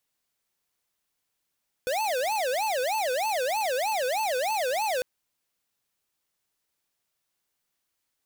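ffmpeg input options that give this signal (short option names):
-f lavfi -i "aevalsrc='0.0447*(2*lt(mod((690.5*t-194.5/(2*PI*3.2)*sin(2*PI*3.2*t)),1),0.5)-1)':d=3.15:s=44100"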